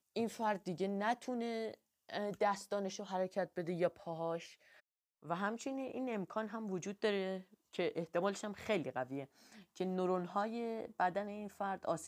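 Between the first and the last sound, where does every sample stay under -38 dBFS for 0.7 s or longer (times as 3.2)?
4.38–5.3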